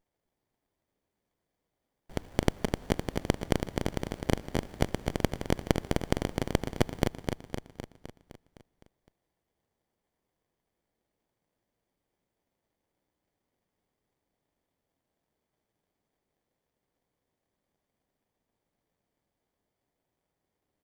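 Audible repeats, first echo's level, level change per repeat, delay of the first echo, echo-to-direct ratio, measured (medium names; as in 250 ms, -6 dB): 7, -5.0 dB, -4.5 dB, 256 ms, -3.0 dB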